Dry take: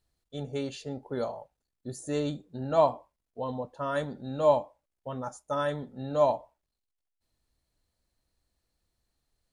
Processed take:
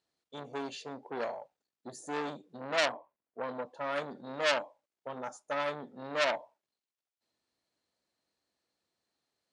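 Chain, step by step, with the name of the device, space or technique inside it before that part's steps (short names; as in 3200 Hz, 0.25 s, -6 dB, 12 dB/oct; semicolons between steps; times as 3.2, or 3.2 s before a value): public-address speaker with an overloaded transformer (core saturation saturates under 3800 Hz; BPF 250–6900 Hz); 2.92–3.44 LPF 2100 Hz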